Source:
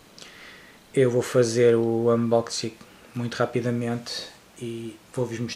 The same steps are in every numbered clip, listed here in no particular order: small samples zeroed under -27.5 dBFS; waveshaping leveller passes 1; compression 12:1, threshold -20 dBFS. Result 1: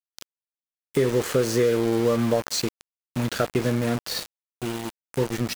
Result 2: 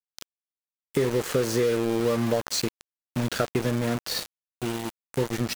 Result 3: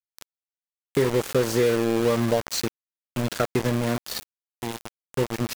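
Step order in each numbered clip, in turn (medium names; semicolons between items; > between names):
compression > waveshaping leveller > small samples zeroed; waveshaping leveller > compression > small samples zeroed; compression > small samples zeroed > waveshaping leveller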